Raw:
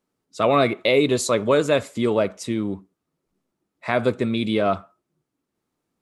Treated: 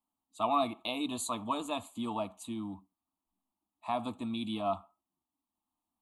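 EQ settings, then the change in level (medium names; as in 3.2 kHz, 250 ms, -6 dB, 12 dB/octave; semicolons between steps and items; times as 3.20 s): bass shelf 110 Hz -6 dB; static phaser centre 540 Hz, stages 6; static phaser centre 1.5 kHz, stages 6; -3.5 dB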